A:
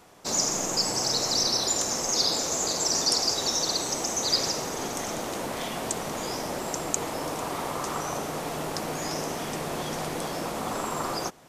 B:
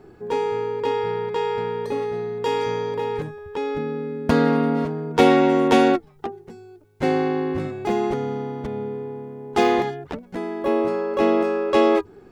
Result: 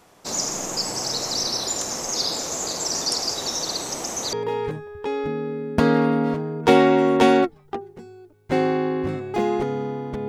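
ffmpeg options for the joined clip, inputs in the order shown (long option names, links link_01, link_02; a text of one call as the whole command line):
ffmpeg -i cue0.wav -i cue1.wav -filter_complex "[0:a]apad=whole_dur=10.28,atrim=end=10.28,atrim=end=4.332[link_01];[1:a]atrim=start=2.838:end=8.79[link_02];[link_01][link_02]acrossfade=duration=0.004:curve1=hsin:curve2=hsin" out.wav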